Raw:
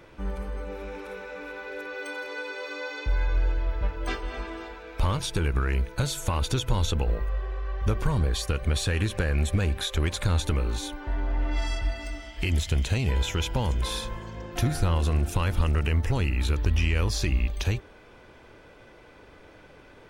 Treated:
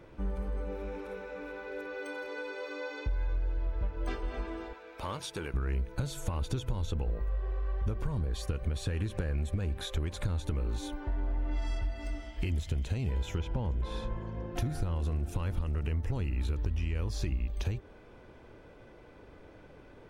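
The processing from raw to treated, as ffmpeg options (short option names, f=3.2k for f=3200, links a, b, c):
-filter_complex "[0:a]asettb=1/sr,asplit=3[a][b][c];[a]atrim=end=4.734[d];[b]atrim=start=4.73:end=5.54,asetpts=PTS-STARTPTS,afade=t=in:d=0.004:c=qsin,afade=t=out:st=0.806:d=0.004:c=qsin,highpass=f=650:p=1[e];[c]atrim=start=5.536[f];[d][e]acrossfade=d=0.004:c1=hsin:c2=qsin[g];[g][f]acrossfade=d=0.004:c1=qsin:c2=hsin,asettb=1/sr,asplit=3[h][i][j];[h]atrim=end=13.384[k];[i]atrim=start=13.38:end=14.55,asetpts=PTS-STARTPTS,afade=t=in:d=0.004:c=qsin,afade=t=out:st=1.166:d=0.004:c=qsin,aemphasis=mode=reproduction:type=75fm[l];[j]atrim=start=14.546[m];[k][l]acrossfade=d=0.004:c1=hsin:c2=qsin[n];[n][m]acrossfade=d=0.004:c1=qsin:c2=hsin,tiltshelf=f=910:g=4.5,acompressor=threshold=-24dB:ratio=5,volume=-4.5dB"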